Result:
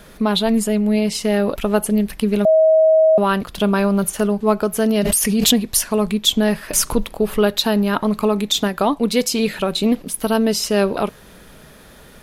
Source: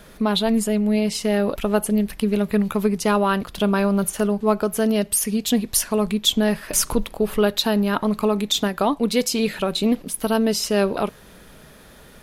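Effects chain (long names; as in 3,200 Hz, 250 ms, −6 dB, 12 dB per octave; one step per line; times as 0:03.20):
0:02.45–0:03.18: beep over 636 Hz −11.5 dBFS
0:04.97–0:05.67: background raised ahead of every attack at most 22 dB per second
level +2.5 dB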